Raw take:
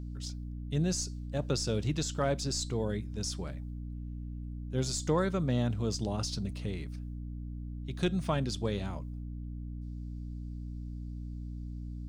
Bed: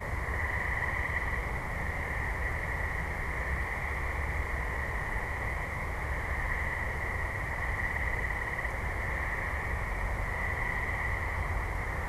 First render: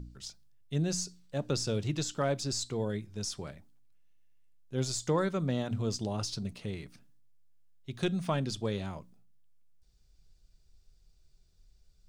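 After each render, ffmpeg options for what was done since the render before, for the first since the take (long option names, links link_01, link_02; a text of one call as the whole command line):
ffmpeg -i in.wav -af "bandreject=frequency=60:width_type=h:width=4,bandreject=frequency=120:width_type=h:width=4,bandreject=frequency=180:width_type=h:width=4,bandreject=frequency=240:width_type=h:width=4,bandreject=frequency=300:width_type=h:width=4" out.wav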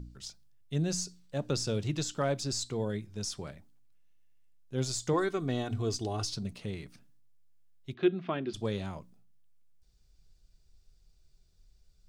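ffmpeg -i in.wav -filter_complex "[0:a]asettb=1/sr,asplit=3[link_01][link_02][link_03];[link_01]atrim=end=5.134[link_04];[link_02]atrim=start=5.13:end=6.33,asetpts=PTS-STARTPTS,afade=type=in:duration=0.004:curve=qsin,afade=type=out:start_time=1.196:duration=0.004:curve=qsin,aecho=1:1:2.7:0.65,atrim=end_sample=52920[link_05];[link_03]atrim=start=6.326[link_06];[link_04][link_05]acrossfade=duration=0.004:curve1=hsin:curve2=qsin[link_07];[link_07][link_06]acrossfade=duration=0.004:curve1=qsin:curve2=hsin,asplit=3[link_08][link_09][link_10];[link_08]afade=type=out:start_time=7.93:duration=0.02[link_11];[link_09]highpass=240,equalizer=frequency=360:width_type=q:width=4:gain=10,equalizer=frequency=510:width_type=q:width=4:gain=-7,equalizer=frequency=900:width_type=q:width=4:gain=-5,lowpass=frequency=3200:width=0.5412,lowpass=frequency=3200:width=1.3066,afade=type=in:start_time=7.93:duration=0.02,afade=type=out:start_time=8.53:duration=0.02[link_12];[link_10]afade=type=in:start_time=8.53:duration=0.02[link_13];[link_11][link_12][link_13]amix=inputs=3:normalize=0" out.wav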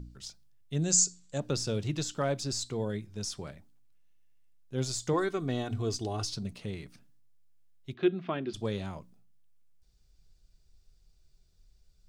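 ffmpeg -i in.wav -filter_complex "[0:a]asettb=1/sr,asplit=3[link_01][link_02][link_03];[link_01]atrim=end=0.824[link_04];[link_02]atrim=start=0.82:end=1.4,asetpts=PTS-STARTPTS,afade=type=in:duration=0.004:curve=qsin,afade=type=out:start_time=0.576:duration=0.004:curve=qsin,lowpass=frequency=7300:width_type=q:width=9.2[link_05];[link_03]atrim=start=1.396[link_06];[link_04][link_05]acrossfade=duration=0.004:curve1=hsin:curve2=qsin[link_07];[link_07][link_06]acrossfade=duration=0.004:curve1=qsin:curve2=hsin" out.wav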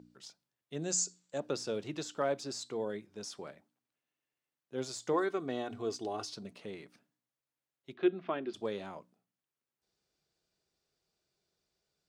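ffmpeg -i in.wav -af "highpass=320,highshelf=frequency=3000:gain=-9.5" out.wav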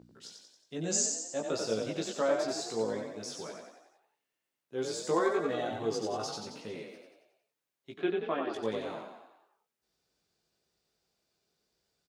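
ffmpeg -i in.wav -filter_complex "[0:a]asplit=2[link_01][link_02];[link_02]adelay=18,volume=-2.5dB[link_03];[link_01][link_03]amix=inputs=2:normalize=0,asplit=8[link_04][link_05][link_06][link_07][link_08][link_09][link_10][link_11];[link_05]adelay=91,afreqshift=38,volume=-4.5dB[link_12];[link_06]adelay=182,afreqshift=76,volume=-9.9dB[link_13];[link_07]adelay=273,afreqshift=114,volume=-15.2dB[link_14];[link_08]adelay=364,afreqshift=152,volume=-20.6dB[link_15];[link_09]adelay=455,afreqshift=190,volume=-25.9dB[link_16];[link_10]adelay=546,afreqshift=228,volume=-31.3dB[link_17];[link_11]adelay=637,afreqshift=266,volume=-36.6dB[link_18];[link_04][link_12][link_13][link_14][link_15][link_16][link_17][link_18]amix=inputs=8:normalize=0" out.wav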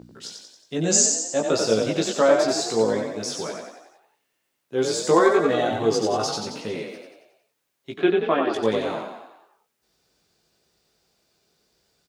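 ffmpeg -i in.wav -af "volume=11.5dB" out.wav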